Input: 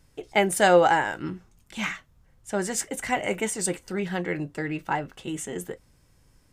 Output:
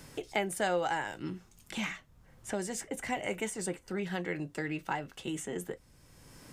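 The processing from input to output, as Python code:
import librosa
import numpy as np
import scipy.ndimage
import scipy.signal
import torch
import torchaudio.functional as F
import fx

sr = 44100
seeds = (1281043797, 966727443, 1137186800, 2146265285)

y = fx.dynamic_eq(x, sr, hz=1400.0, q=1.6, threshold_db=-44.0, ratio=4.0, max_db=-6, at=(1.07, 3.21))
y = fx.band_squash(y, sr, depth_pct=70)
y = y * 10.0 ** (-7.5 / 20.0)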